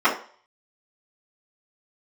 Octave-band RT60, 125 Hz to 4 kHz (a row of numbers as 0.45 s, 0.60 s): 0.40 s, 0.35 s, 0.45 s, 0.45 s, 0.40 s, 0.45 s